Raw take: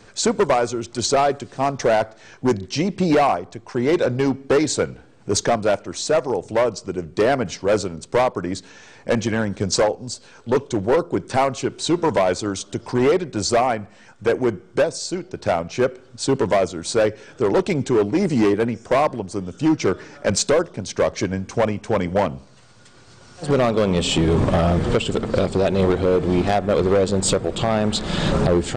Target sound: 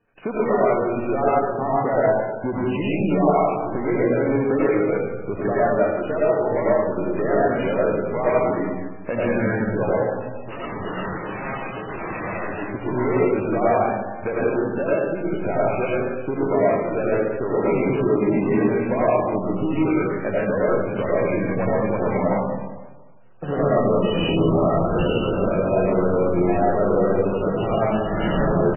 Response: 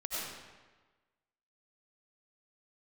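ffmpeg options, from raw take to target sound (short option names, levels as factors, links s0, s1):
-filter_complex "[0:a]agate=range=0.0562:threshold=0.0158:ratio=16:detection=peak,equalizer=f=64:w=1.6:g=-7,acompressor=threshold=0.0282:ratio=3,asettb=1/sr,asplit=3[s0][s1][s2];[s0]atrim=end=10.034[s3];[s1]atrim=start=10.03:end=12.64,asetpts=PTS-STARTPTS,afade=t=in:d=0.004:c=qsin,afade=t=out:st=2.606:d=0.004:c=qsin,aeval=exprs='0.0224*(abs(mod(val(0)/0.0224+3,4)-2)-1)':c=same[s4];[s2]atrim=start=12.636[s5];[s3][s4]acrossfade=d=0.004:c1=hsin:c2=qsin[s6];[s6][s5]acrossfade=d=0.004:c1=qsin:c2=hsin[s7];[1:a]atrim=start_sample=2205[s8];[s7][s8]afir=irnorm=-1:irlink=0,aresample=8000,aresample=44100,volume=2.37" -ar 12000 -c:a libmp3lame -b:a 8k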